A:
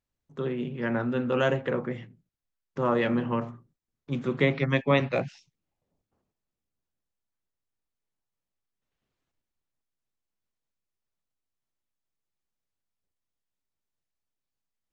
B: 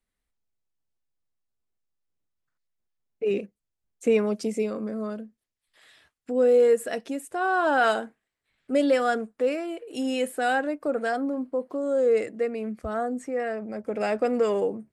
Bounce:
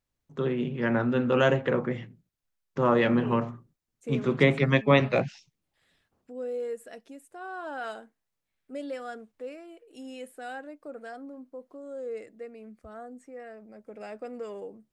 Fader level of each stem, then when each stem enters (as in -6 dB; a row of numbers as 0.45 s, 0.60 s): +2.5 dB, -14.5 dB; 0.00 s, 0.00 s